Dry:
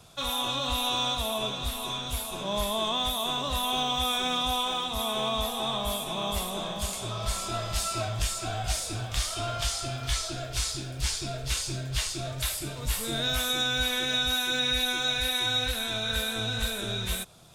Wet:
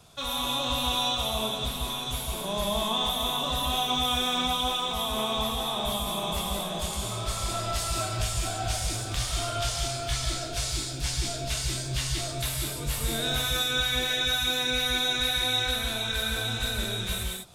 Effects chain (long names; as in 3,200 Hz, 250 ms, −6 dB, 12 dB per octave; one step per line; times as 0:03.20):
reverb whose tail is shaped and stops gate 220 ms rising, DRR 1.5 dB
level −1.5 dB